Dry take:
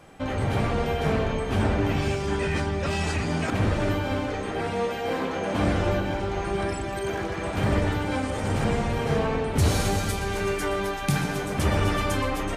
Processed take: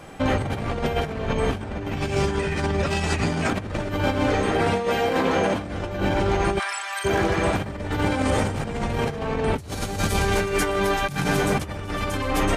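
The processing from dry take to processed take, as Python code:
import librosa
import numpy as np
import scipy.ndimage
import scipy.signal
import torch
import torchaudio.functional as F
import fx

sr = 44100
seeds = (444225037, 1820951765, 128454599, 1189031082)

y = fx.highpass(x, sr, hz=990.0, slope=24, at=(6.58, 7.04), fade=0.02)
y = fx.over_compress(y, sr, threshold_db=-28.0, ratio=-0.5)
y = y * 10.0 ** (5.0 / 20.0)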